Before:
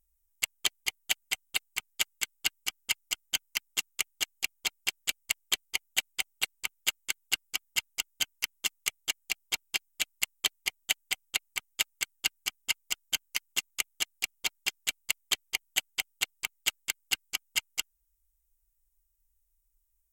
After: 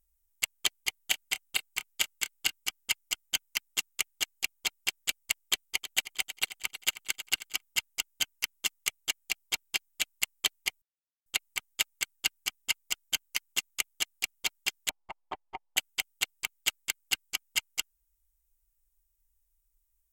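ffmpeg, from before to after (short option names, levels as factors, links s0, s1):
-filter_complex "[0:a]asettb=1/sr,asplit=3[s0][s1][s2];[s0]atrim=end=0.964[s3];[s1]atrim=start=0.96:end=2.57,asetpts=PTS-STARTPTS,afade=t=in:d=0.004:c=qsin,afade=t=out:st=1.606:d=0.004:c=qsin,asplit=2[s4][s5];[s5]adelay=28,volume=0.2[s6];[s4][s6]amix=inputs=2:normalize=0,atrim=end_sample=71001[s7];[s2]atrim=start=2.566[s8];[s3][s7]acrossfade=d=0.004:c1=hsin:c2=qsin[s9];[s9][s8]acrossfade=d=0.004:c1=qsin:c2=hsin,asettb=1/sr,asplit=3[s10][s11][s12];[s10]atrim=end=5.454[s13];[s11]atrim=start=5.45:end=7.62,asetpts=PTS-STARTPTS,afade=t=in:d=0.004:c=qsin,afade=t=out:st=2.166:d=0.004:c=qsin,aecho=1:1:316|632|948:0.224|0.0515|0.0118,atrim=end_sample=95697[s14];[s12]atrim=start=7.616[s15];[s13][s14]acrossfade=d=0.004:c1=hsin:c2=qsin[s16];[s16][s15]acrossfade=d=0.004:c1=qsin:c2=hsin,asettb=1/sr,asplit=3[s17][s18][s19];[s17]atrim=end=14.894[s20];[s18]atrim=start=14.89:end=15.77,asetpts=PTS-STARTPTS,afade=t=in:d=0.004:c=qsin,afade=t=out:st=0.876:d=0.004:c=qsin,lowpass=f=880:t=q:w=4.9[s21];[s19]atrim=start=15.766[s22];[s20][s21]acrossfade=d=0.004:c1=hsin:c2=qsin[s23];[s23][s22]acrossfade=d=0.004:c1=qsin:c2=hsin,asplit=3[s24][s25][s26];[s24]atrim=end=10.82,asetpts=PTS-STARTPTS,afade=t=out:st=10.816:d=0.004:c=hsin[s27];[s25]atrim=start=10.82:end=11.26,asetpts=PTS-STARTPTS,volume=0[s28];[s26]atrim=start=11.26,asetpts=PTS-STARTPTS,afade=t=in:d=0.004:c=hsin[s29];[s27][s28][s29]concat=n=3:v=0:a=1"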